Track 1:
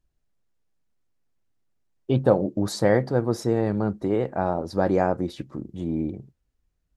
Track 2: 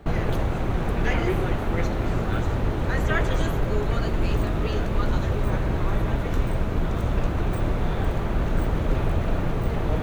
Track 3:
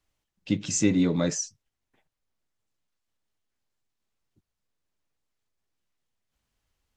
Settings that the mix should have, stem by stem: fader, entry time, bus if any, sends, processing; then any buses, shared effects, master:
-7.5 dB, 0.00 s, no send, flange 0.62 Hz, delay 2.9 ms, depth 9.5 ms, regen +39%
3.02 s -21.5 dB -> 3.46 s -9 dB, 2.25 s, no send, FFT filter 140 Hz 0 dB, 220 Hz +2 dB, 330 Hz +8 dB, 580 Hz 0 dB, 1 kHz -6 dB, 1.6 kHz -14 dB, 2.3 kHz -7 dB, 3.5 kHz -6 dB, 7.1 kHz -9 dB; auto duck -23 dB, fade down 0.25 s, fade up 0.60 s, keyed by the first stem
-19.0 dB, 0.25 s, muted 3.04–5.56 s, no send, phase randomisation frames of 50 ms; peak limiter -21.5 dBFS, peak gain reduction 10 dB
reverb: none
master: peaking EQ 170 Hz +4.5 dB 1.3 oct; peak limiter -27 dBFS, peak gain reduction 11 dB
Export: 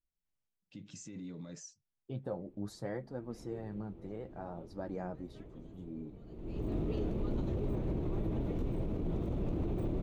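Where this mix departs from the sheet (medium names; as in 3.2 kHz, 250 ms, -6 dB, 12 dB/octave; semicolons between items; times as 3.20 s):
stem 1 -7.5 dB -> -16.5 dB; stem 3: missing phase randomisation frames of 50 ms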